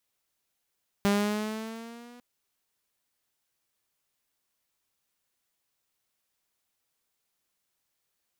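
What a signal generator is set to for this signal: gliding synth tone saw, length 1.15 s, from 200 Hz, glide +3.5 st, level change -28 dB, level -18 dB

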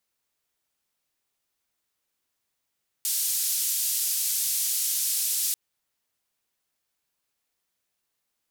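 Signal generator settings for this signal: noise band 5.2–15 kHz, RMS -26.5 dBFS 2.49 s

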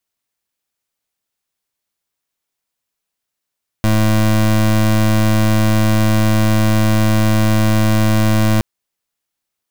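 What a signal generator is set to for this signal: pulse 108 Hz, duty 25% -12.5 dBFS 4.77 s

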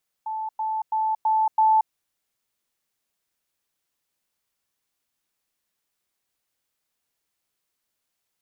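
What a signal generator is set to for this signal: level ladder 875 Hz -26.5 dBFS, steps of 3 dB, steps 5, 0.23 s 0.10 s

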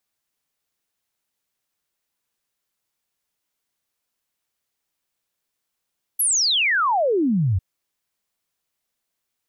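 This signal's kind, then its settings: log sweep 12 kHz -> 85 Hz 1.40 s -16.5 dBFS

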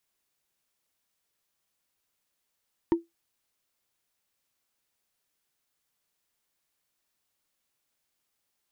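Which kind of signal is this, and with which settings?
wood hit, lowest mode 336 Hz, decay 0.17 s, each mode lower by 10 dB, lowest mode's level -15 dB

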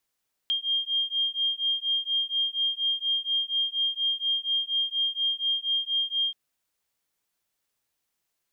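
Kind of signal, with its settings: beating tones 3.21 kHz, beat 4.2 Hz, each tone -27.5 dBFS 5.83 s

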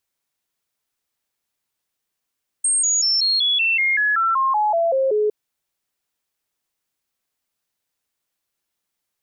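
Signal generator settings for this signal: stepped sine 8.53 kHz down, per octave 3, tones 14, 0.19 s, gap 0.00 s -15.5 dBFS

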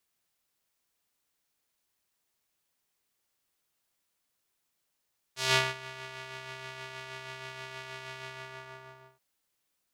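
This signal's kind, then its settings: synth patch with tremolo C3, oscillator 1 square, interval 0 st, oscillator 2 level -14 dB, filter bandpass, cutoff 1 kHz, Q 0.93, filter envelope 2.5 oct, filter sustain 50%, attack 154 ms, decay 0.22 s, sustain -21 dB, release 0.94 s, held 2.89 s, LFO 6.3 Hz, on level 3.5 dB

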